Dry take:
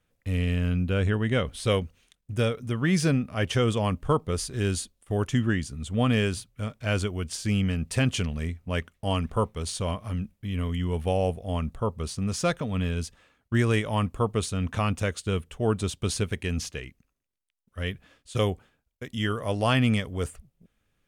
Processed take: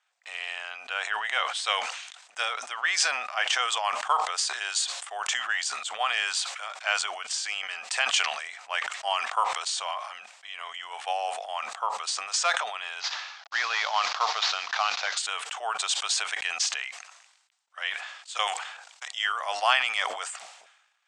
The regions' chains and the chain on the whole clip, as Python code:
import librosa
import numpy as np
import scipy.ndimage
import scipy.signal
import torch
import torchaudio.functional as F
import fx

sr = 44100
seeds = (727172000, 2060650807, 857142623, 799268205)

y = fx.chain(x, sr, fx.cvsd(bps=32000),
    fx.peak_eq(hz=4300.0, db=4.0, octaves=0.91), at=(13.0, 15.17))
y = fx.chain(y, sr, fx.level_steps(step_db=12),
    fx.hum_notches(base_hz=60, count=9),
    fx.spectral_comp(ratio=2.0), at=(18.47, 19.08))
y = fx.transient(y, sr, attack_db=3, sustain_db=8)
y = scipy.signal.sosfilt(scipy.signal.cheby1(4, 1.0, [740.0, 8000.0], 'bandpass', fs=sr, output='sos'), y)
y = fx.sustainer(y, sr, db_per_s=56.0)
y = y * librosa.db_to_amplitude(4.0)